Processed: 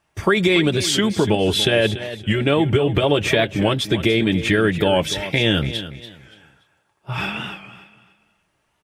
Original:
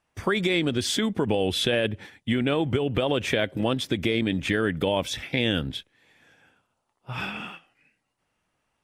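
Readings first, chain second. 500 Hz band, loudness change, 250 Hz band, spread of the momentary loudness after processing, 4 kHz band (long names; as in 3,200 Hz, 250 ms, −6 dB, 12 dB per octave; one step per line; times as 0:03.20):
+7.0 dB, +7.0 dB, +6.0 dB, 10 LU, +7.0 dB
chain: notch comb filter 250 Hz
repeating echo 287 ms, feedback 28%, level −13 dB
wow of a warped record 45 rpm, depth 100 cents
level +8 dB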